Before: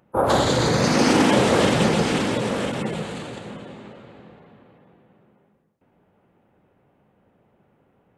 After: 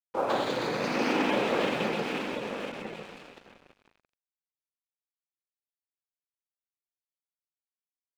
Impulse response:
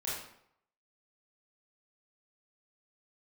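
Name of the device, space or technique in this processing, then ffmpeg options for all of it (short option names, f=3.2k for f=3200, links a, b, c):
pocket radio on a weak battery: -af "highpass=250,lowpass=3.8k,aeval=exprs='sgn(val(0))*max(abs(val(0))-0.0133,0)':c=same,equalizer=f=2.5k:t=o:w=0.21:g=7,volume=-7.5dB"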